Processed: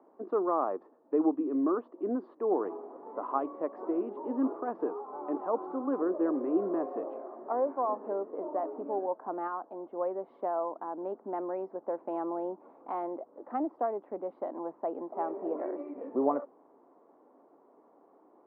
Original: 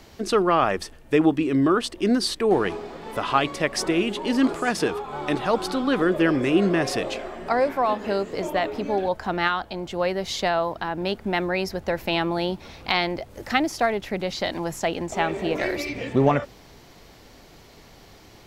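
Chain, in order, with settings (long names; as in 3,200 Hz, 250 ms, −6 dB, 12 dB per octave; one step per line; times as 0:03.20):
elliptic band-pass filter 270–1,100 Hz, stop band 80 dB
level −7.5 dB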